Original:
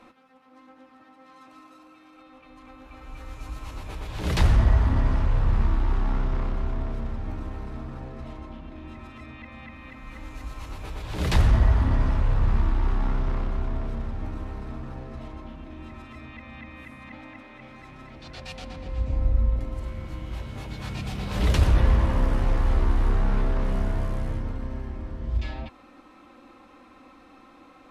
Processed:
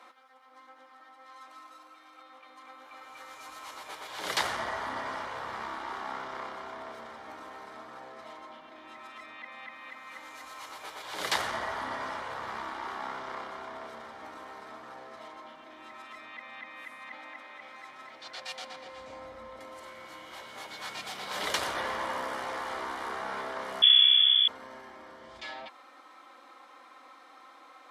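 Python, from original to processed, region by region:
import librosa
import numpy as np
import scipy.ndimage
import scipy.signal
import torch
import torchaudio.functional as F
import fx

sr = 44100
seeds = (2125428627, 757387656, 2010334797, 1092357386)

y = fx.chain(x, sr, fx.freq_invert(carrier_hz=3400),
    fx.comb(ms=4.7, depth=0.43), at=(23.82, 24.48))
y = scipy.signal.sosfilt(scipy.signal.butter(2, 730.0, 'highpass', fs=sr, output='sos'), y)
y = fx.notch(y, sr, hz=2600.0, q=7.6)
y = F.gain(torch.from_numpy(y), 2.5).numpy()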